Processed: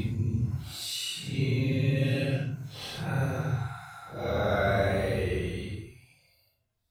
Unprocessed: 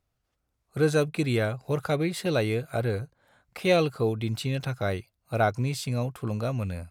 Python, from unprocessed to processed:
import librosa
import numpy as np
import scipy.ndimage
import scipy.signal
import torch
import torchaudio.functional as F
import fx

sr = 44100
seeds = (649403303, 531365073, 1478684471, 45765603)

y = fx.paulstretch(x, sr, seeds[0], factor=8.0, window_s=0.05, from_s=4.28)
y = fx.spec_repair(y, sr, seeds[1], start_s=3.15, length_s=0.97, low_hz=700.0, high_hz=5100.0, source='both')